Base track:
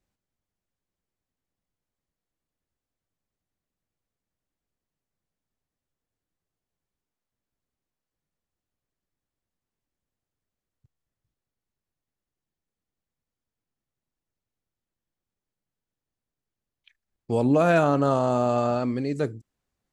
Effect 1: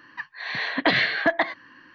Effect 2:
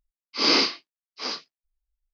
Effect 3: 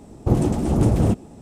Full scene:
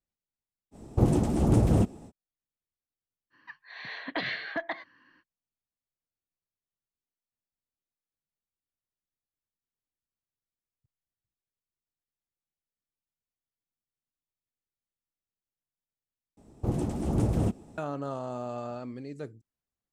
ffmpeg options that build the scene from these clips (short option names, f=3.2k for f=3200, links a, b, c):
-filter_complex "[3:a]asplit=2[a][b];[0:a]volume=-13dB[c];[b]dynaudnorm=f=200:g=3:m=7dB[d];[c]asplit=2[e][f];[e]atrim=end=16.374[g];[d]atrim=end=1.41,asetpts=PTS-STARTPTS,volume=-13dB[h];[f]atrim=start=17.776[i];[a]atrim=end=1.41,asetpts=PTS-STARTPTS,volume=-4.5dB,afade=t=in:d=0.05,afade=t=out:st=1.36:d=0.05,adelay=710[j];[1:a]atrim=end=1.94,asetpts=PTS-STARTPTS,volume=-12dB,afade=t=in:d=0.05,afade=t=out:st=1.89:d=0.05,adelay=3300[k];[g][h]acrossfade=d=0.004:c1=hsin:c2=hsin[l];[l][i]acrossfade=d=0.004:c1=hsin:c2=hsin[m];[m][j][k]amix=inputs=3:normalize=0"